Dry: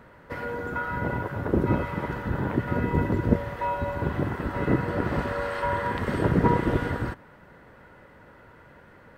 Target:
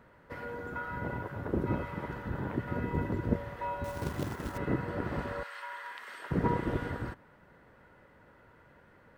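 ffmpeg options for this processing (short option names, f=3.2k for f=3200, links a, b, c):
-filter_complex "[0:a]asettb=1/sr,asplit=3[a][b][c];[a]atrim=end=3.844[d];[b]atrim=start=3.84:end=4.58,asetpts=PTS-STARTPTS,afade=t=in:d=0.004:c=qsin,afade=t=out:st=0.736:d=0.004:c=qsin,acrusher=bits=3:mode=log:mix=0:aa=0.000001[e];[c]atrim=start=4.576[f];[d][e]acrossfade=d=0.004:c1=hsin:c2=qsin[g];[g][f]acrossfade=d=0.004:c1=qsin:c2=hsin,asettb=1/sr,asplit=3[h][i][j];[h]atrim=end=5.434[k];[i]atrim=start=5.43:end=6.31,asetpts=PTS-STARTPTS,afade=t=in:d=0.004:c=qsin,afade=t=out:st=0.876:d=0.004:c=qsin,highpass=1.4k[l];[j]atrim=start=6.306[m];[k][l]acrossfade=d=0.004:c1=hsin:c2=qsin[n];[n][m]acrossfade=d=0.004:c1=qsin:c2=hsin,volume=-8dB"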